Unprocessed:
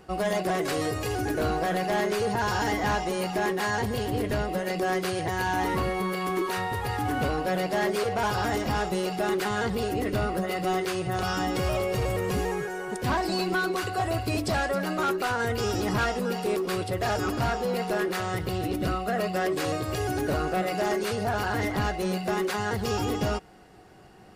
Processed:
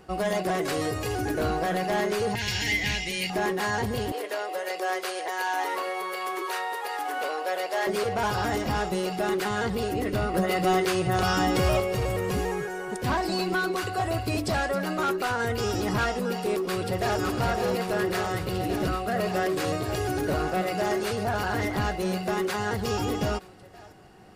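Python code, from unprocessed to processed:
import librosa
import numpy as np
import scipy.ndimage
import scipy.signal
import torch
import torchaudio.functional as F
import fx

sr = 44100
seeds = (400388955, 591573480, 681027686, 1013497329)

y = fx.curve_eq(x, sr, hz=(120.0, 280.0, 1300.0, 2100.0, 9900.0), db=(0, -6, -17, 11, 2), at=(2.35, 3.3))
y = fx.highpass(y, sr, hz=440.0, slope=24, at=(4.12, 7.87))
y = fx.echo_throw(y, sr, start_s=16.27, length_s=0.93, ms=560, feedback_pct=85, wet_db=-6.5)
y = fx.edit(y, sr, fx.clip_gain(start_s=10.34, length_s=1.46, db=4.0), tone=tone)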